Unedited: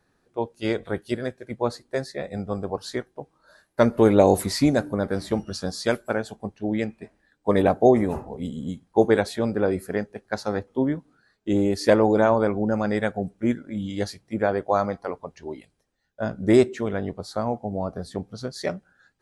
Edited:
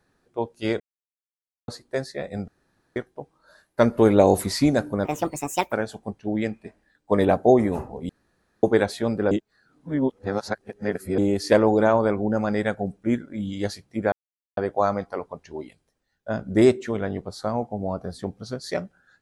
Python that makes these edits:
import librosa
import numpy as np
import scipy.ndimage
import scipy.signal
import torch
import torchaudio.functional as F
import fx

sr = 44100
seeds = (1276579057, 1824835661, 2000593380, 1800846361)

y = fx.edit(x, sr, fx.silence(start_s=0.8, length_s=0.88),
    fx.room_tone_fill(start_s=2.48, length_s=0.48),
    fx.speed_span(start_s=5.05, length_s=1.04, speed=1.55),
    fx.room_tone_fill(start_s=8.46, length_s=0.54),
    fx.reverse_span(start_s=9.68, length_s=1.87),
    fx.insert_silence(at_s=14.49, length_s=0.45), tone=tone)